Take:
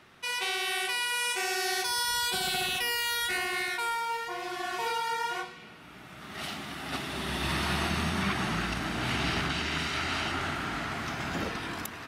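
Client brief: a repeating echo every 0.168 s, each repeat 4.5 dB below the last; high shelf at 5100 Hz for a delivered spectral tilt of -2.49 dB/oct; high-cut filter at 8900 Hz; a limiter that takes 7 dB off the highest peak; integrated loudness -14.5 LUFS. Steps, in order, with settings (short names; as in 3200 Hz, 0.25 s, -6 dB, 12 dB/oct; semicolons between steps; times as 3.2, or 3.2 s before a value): LPF 8900 Hz; high shelf 5100 Hz +6 dB; limiter -21.5 dBFS; feedback echo 0.168 s, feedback 60%, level -4.5 dB; gain +14.5 dB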